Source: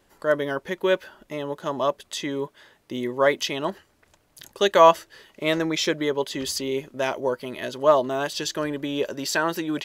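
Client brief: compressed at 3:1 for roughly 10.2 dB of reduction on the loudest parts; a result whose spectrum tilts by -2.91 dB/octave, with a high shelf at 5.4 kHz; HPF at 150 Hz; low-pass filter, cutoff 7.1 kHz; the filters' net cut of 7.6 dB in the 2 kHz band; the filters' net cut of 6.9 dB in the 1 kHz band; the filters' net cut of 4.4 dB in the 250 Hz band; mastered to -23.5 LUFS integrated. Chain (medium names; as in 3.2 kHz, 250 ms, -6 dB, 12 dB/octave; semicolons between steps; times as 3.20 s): high-pass 150 Hz; low-pass 7.1 kHz; peaking EQ 250 Hz -5 dB; peaking EQ 1 kHz -6 dB; peaking EQ 2 kHz -9 dB; treble shelf 5.4 kHz +8 dB; compression 3:1, threshold -28 dBFS; trim +9 dB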